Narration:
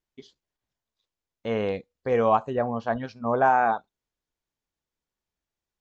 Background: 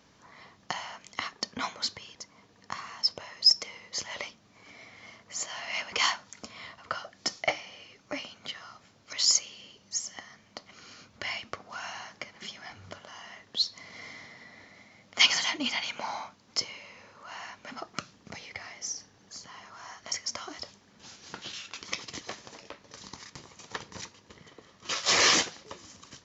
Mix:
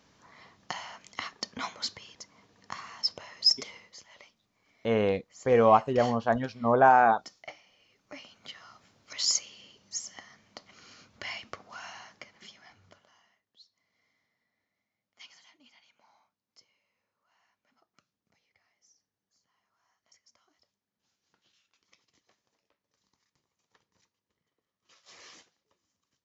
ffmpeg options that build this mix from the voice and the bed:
ffmpeg -i stem1.wav -i stem2.wav -filter_complex "[0:a]adelay=3400,volume=1dB[link_01];[1:a]volume=10.5dB,afade=type=out:start_time=3.76:duration=0.21:silence=0.199526,afade=type=in:start_time=7.77:duration=1.1:silence=0.223872,afade=type=out:start_time=11.57:duration=1.84:silence=0.0446684[link_02];[link_01][link_02]amix=inputs=2:normalize=0" out.wav

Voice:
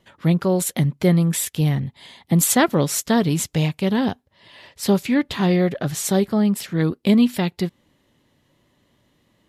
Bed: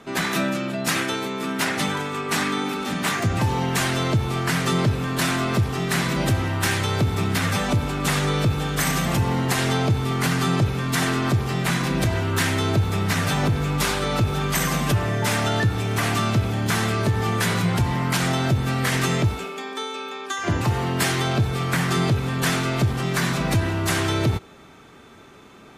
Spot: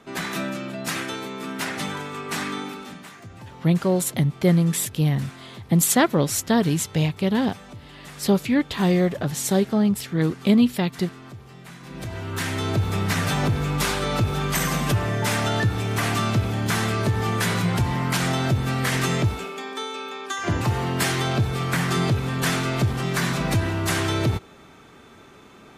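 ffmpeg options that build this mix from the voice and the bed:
ffmpeg -i stem1.wav -i stem2.wav -filter_complex "[0:a]adelay=3400,volume=-1.5dB[link_01];[1:a]volume=14dB,afade=type=out:start_time=2.55:duration=0.53:silence=0.177828,afade=type=in:start_time=11.81:duration=1.14:silence=0.112202[link_02];[link_01][link_02]amix=inputs=2:normalize=0" out.wav

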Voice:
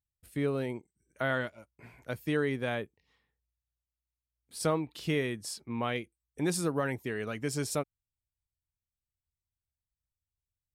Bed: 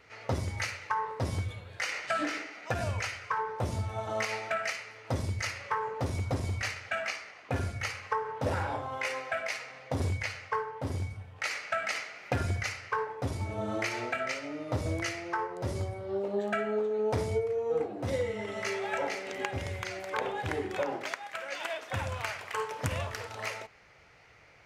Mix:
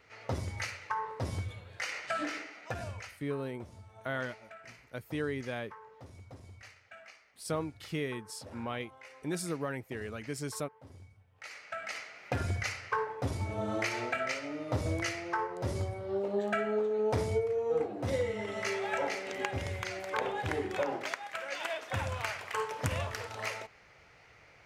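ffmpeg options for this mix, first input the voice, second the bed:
ffmpeg -i stem1.wav -i stem2.wav -filter_complex "[0:a]adelay=2850,volume=-5dB[link_01];[1:a]volume=15dB,afade=type=out:start_time=2.5:duration=0.74:silence=0.16788,afade=type=in:start_time=11.28:duration=1.48:silence=0.11885[link_02];[link_01][link_02]amix=inputs=2:normalize=0" out.wav

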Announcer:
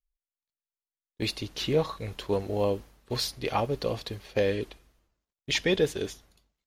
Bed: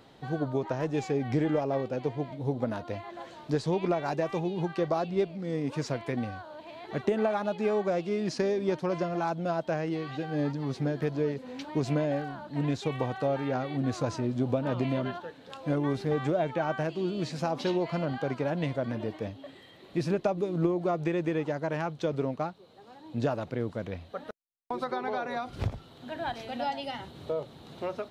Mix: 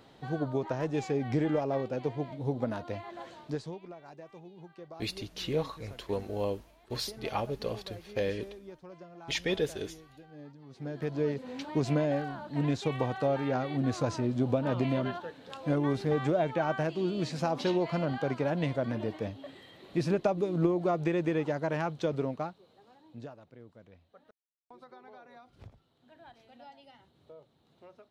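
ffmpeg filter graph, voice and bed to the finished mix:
ffmpeg -i stem1.wav -i stem2.wav -filter_complex "[0:a]adelay=3800,volume=-5.5dB[link_01];[1:a]volume=17.5dB,afade=type=out:start_time=3.28:duration=0.52:silence=0.133352,afade=type=in:start_time=10.7:duration=0.61:silence=0.112202,afade=type=out:start_time=21.95:duration=1.4:silence=0.1[link_02];[link_01][link_02]amix=inputs=2:normalize=0" out.wav

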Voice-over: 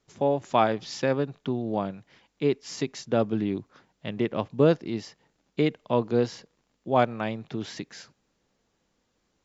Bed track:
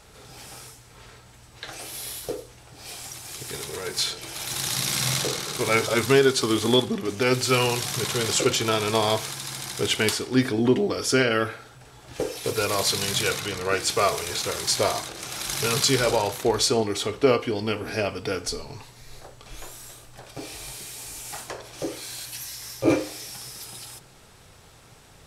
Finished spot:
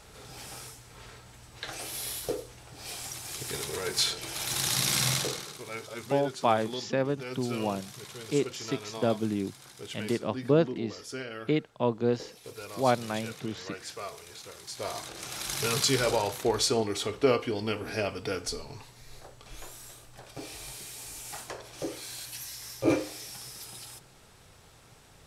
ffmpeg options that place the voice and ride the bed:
ffmpeg -i stem1.wav -i stem2.wav -filter_complex "[0:a]adelay=5900,volume=-3dB[link_01];[1:a]volume=12dB,afade=type=out:start_time=4.98:duration=0.64:silence=0.149624,afade=type=in:start_time=14.75:duration=0.42:silence=0.223872[link_02];[link_01][link_02]amix=inputs=2:normalize=0" out.wav

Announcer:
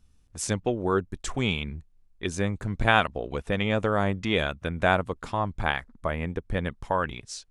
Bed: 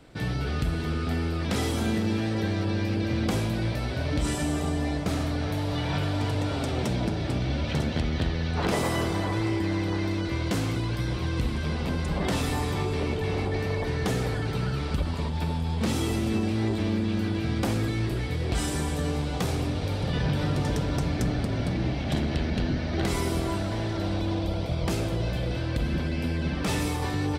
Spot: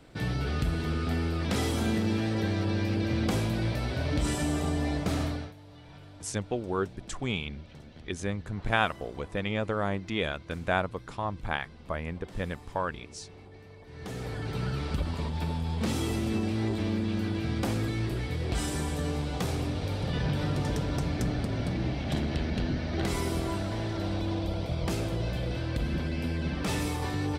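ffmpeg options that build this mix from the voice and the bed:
ffmpeg -i stem1.wav -i stem2.wav -filter_complex "[0:a]adelay=5850,volume=-5dB[link_01];[1:a]volume=17.5dB,afade=type=out:start_time=5.24:duration=0.29:silence=0.0944061,afade=type=in:start_time=13.87:duration=0.8:silence=0.112202[link_02];[link_01][link_02]amix=inputs=2:normalize=0" out.wav

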